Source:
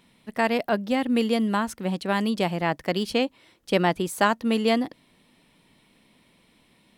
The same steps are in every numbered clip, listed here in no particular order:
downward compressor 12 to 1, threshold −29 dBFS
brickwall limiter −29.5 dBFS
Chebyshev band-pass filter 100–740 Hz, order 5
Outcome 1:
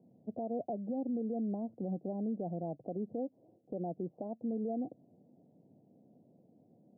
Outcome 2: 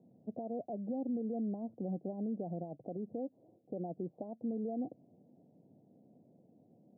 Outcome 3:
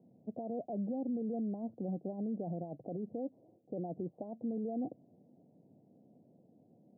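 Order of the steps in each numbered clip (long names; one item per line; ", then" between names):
downward compressor, then Chebyshev band-pass filter, then brickwall limiter
downward compressor, then brickwall limiter, then Chebyshev band-pass filter
brickwall limiter, then downward compressor, then Chebyshev band-pass filter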